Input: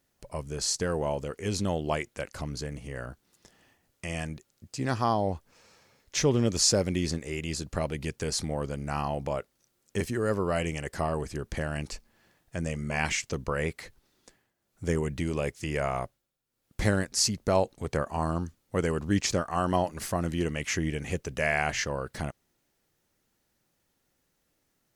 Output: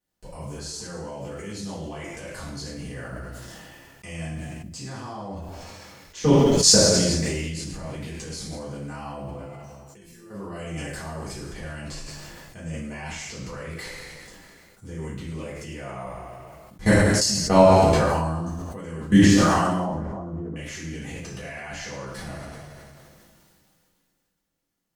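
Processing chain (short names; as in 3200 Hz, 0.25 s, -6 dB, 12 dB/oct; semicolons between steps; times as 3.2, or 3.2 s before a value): 19.75–20.56 LPF 1100 Hz 24 dB/oct; level quantiser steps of 23 dB; 6.33–6.79 crackle 430/s -> 140/s -53 dBFS; 9.25–10.3 resonator 170 Hz, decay 0.47 s, harmonics all, mix 90%; two-slope reverb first 0.72 s, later 1.8 s, DRR -10 dB; sustainer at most 21 dB/s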